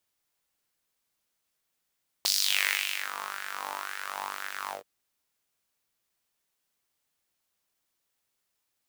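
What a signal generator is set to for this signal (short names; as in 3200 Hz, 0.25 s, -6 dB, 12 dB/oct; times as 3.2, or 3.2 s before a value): synth patch with filter wobble G2, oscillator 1 saw, sub -6 dB, noise -16.5 dB, filter highpass, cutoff 530 Hz, Q 3.3, filter envelope 3 oct, filter decay 1.07 s, attack 1.4 ms, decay 0.86 s, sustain -16.5 dB, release 0.13 s, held 2.45 s, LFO 1.9 Hz, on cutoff 0.4 oct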